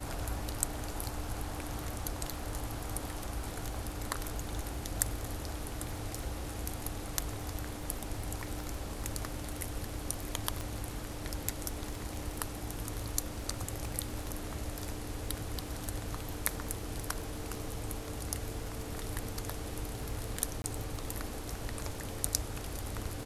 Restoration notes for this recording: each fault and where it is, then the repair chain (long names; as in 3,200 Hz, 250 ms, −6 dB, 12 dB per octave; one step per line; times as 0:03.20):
surface crackle 22 per second −41 dBFS
0:10.61: click
0:20.62–0:20.64: drop-out 20 ms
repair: click removal
repair the gap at 0:20.62, 20 ms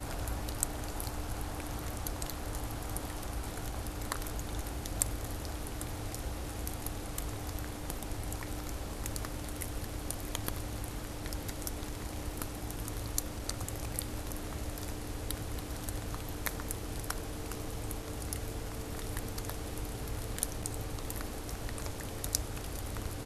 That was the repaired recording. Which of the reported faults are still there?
0:10.61: click